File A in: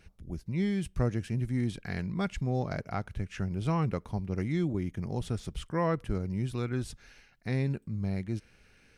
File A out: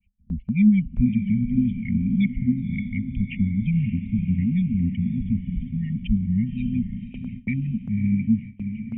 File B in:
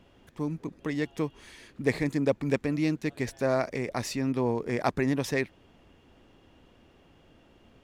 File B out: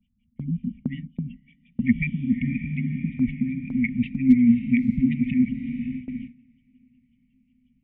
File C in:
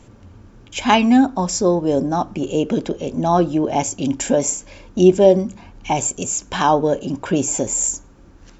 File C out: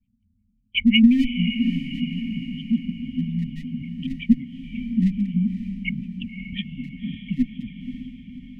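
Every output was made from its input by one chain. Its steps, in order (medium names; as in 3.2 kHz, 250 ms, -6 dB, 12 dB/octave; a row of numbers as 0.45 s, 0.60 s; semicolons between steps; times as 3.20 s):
resonances exaggerated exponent 1.5; cascade formant filter i; LFO low-pass sine 5.5 Hz 290–2900 Hz; in parallel at -8.5 dB: one-sided clip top -18 dBFS; on the sum: vibrato 2 Hz 75 cents; brick-wall FIR band-stop 240–1800 Hz; peaking EQ 130 Hz -10.5 dB 0.94 oct; on a send: echo that smears into a reverb 558 ms, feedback 52%, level -9 dB; on the sum: gate with hold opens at -45 dBFS; normalise loudness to -24 LUFS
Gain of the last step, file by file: +21.0 dB, +22.0 dB, +9.5 dB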